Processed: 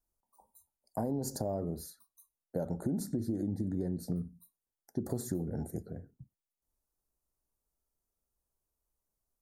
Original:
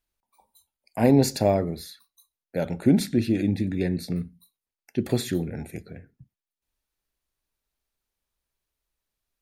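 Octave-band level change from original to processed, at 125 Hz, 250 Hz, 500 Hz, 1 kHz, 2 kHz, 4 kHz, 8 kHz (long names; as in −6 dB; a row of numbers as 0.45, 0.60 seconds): −10.0 dB, −11.5 dB, −12.5 dB, −12.0 dB, below −20 dB, −18.0 dB, −8.0 dB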